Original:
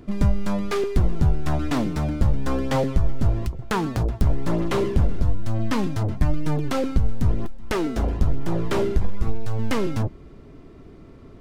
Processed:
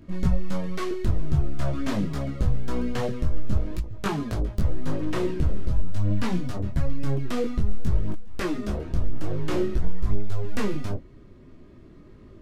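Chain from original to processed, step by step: peaking EQ 930 Hz -6 dB 0.35 oct; speed mistake 48 kHz file played as 44.1 kHz; detune thickener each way 17 cents

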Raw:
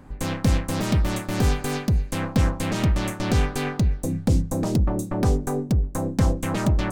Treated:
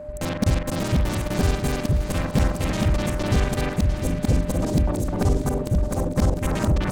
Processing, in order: time reversed locally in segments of 42 ms; shuffle delay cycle 1165 ms, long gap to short 1.5:1, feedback 33%, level -9 dB; whistle 600 Hz -34 dBFS

